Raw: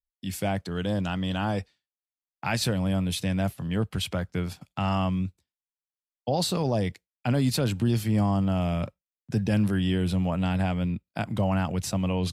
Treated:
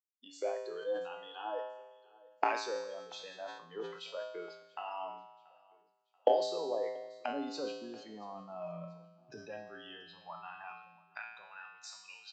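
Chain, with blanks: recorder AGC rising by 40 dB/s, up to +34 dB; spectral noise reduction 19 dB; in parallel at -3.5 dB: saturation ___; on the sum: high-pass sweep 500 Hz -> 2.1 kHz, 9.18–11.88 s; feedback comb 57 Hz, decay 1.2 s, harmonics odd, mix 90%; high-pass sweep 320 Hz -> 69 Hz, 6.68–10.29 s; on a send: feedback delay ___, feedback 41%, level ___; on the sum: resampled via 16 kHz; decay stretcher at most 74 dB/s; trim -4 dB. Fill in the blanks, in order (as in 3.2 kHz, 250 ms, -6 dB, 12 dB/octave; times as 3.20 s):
-13 dBFS, 683 ms, -23.5 dB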